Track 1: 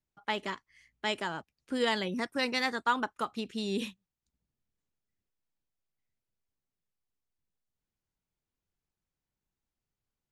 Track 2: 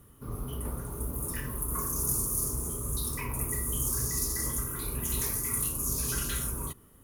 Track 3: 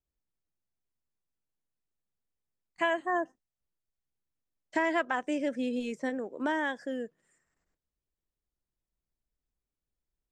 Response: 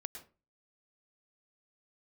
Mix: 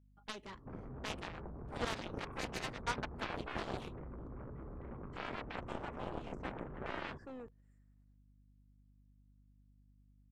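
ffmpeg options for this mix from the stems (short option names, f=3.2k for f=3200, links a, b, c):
-filter_complex "[0:a]volume=-8dB[a];[1:a]lowpass=f=1.2k:w=0.5412,lowpass=f=1.2k:w=1.3066,acompressor=threshold=-39dB:ratio=5,adelay=450,volume=1dB[b];[2:a]alimiter=limit=-22.5dB:level=0:latency=1,aeval=exprs='val(0)+0.000447*(sin(2*PI*60*n/s)+sin(2*PI*2*60*n/s)/2+sin(2*PI*3*60*n/s)/3+sin(2*PI*4*60*n/s)/4+sin(2*PI*5*60*n/s)/5)':c=same,adelay=400,volume=-8.5dB[c];[a][b][c]amix=inputs=3:normalize=0,highshelf=f=3.6k:g=-12,aeval=exprs='val(0)+0.000631*(sin(2*PI*50*n/s)+sin(2*PI*2*50*n/s)/2+sin(2*PI*3*50*n/s)/3+sin(2*PI*4*50*n/s)/4+sin(2*PI*5*50*n/s)/5)':c=same,aeval=exprs='0.0668*(cos(1*acos(clip(val(0)/0.0668,-1,1)))-cos(1*PI/2))+0.0075*(cos(3*acos(clip(val(0)/0.0668,-1,1)))-cos(3*PI/2))+0.015*(cos(7*acos(clip(val(0)/0.0668,-1,1)))-cos(7*PI/2))':c=same"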